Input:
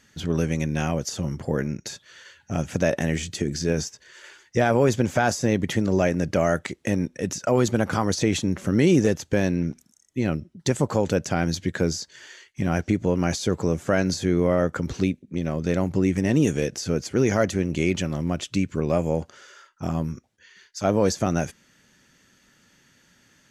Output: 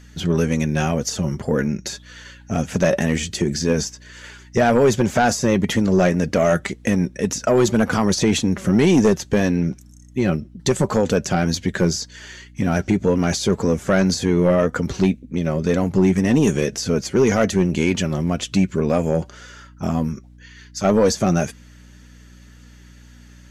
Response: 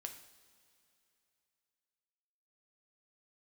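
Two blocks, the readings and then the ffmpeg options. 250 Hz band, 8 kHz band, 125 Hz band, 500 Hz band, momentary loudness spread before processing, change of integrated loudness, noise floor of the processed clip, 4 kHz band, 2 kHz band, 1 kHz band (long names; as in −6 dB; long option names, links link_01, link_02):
+5.0 dB, +5.5 dB, +3.5 dB, +4.5 dB, 8 LU, +4.5 dB, −45 dBFS, +5.5 dB, +4.0 dB, +4.5 dB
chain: -af "flanger=delay=3.9:depth=1.7:regen=53:speed=1.9:shape=triangular,aeval=exprs='0.299*sin(PI/2*1.58*val(0)/0.299)':channel_layout=same,aeval=exprs='val(0)+0.00501*(sin(2*PI*60*n/s)+sin(2*PI*2*60*n/s)/2+sin(2*PI*3*60*n/s)/3+sin(2*PI*4*60*n/s)/4+sin(2*PI*5*60*n/s)/5)':channel_layout=same,volume=2dB"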